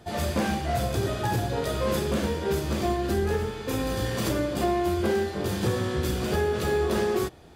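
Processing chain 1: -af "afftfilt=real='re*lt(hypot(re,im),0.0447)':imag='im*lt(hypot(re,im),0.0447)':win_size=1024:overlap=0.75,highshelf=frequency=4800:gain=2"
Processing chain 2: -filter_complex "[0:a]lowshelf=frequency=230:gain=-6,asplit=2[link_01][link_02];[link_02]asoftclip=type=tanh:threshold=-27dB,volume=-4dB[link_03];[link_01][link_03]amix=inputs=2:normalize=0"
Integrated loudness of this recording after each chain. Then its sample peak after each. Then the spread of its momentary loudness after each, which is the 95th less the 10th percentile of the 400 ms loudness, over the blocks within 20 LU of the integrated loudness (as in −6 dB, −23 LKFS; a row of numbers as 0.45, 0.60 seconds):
−36.5, −26.0 LKFS; −19.5, −14.5 dBFS; 4, 3 LU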